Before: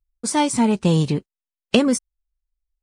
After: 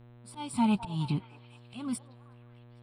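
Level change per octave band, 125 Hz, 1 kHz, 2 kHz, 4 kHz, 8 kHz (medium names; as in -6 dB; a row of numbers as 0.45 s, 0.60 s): -11.5 dB, -11.0 dB, -16.5 dB, -17.0 dB, -18.5 dB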